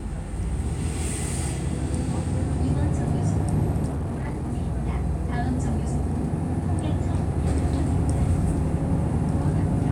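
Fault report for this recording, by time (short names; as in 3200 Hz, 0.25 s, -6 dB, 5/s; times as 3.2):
3.86–4.52 clipped -25 dBFS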